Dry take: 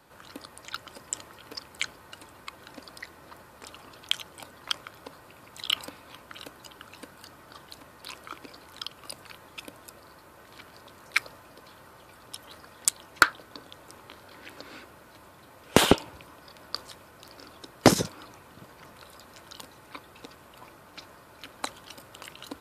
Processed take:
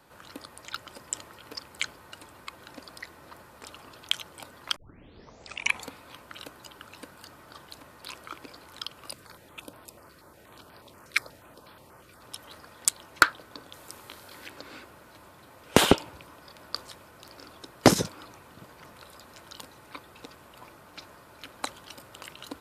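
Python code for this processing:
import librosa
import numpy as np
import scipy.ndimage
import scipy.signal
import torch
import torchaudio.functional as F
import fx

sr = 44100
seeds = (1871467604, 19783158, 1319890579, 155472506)

y = fx.filter_held_notch(x, sr, hz=8.3, low_hz=830.0, high_hz=6800.0, at=(9.13, 12.21))
y = fx.high_shelf(y, sr, hz=3900.0, db=9.0, at=(13.73, 14.48))
y = fx.edit(y, sr, fx.tape_start(start_s=4.76, length_s=1.2), tone=tone)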